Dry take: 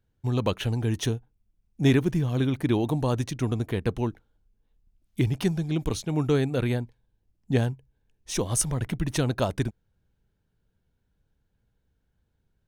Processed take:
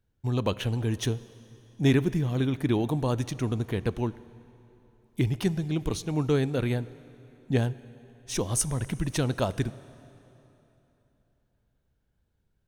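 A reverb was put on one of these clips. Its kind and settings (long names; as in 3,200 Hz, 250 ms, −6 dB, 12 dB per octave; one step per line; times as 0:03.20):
dense smooth reverb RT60 3.3 s, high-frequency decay 0.85×, DRR 17 dB
level −1.5 dB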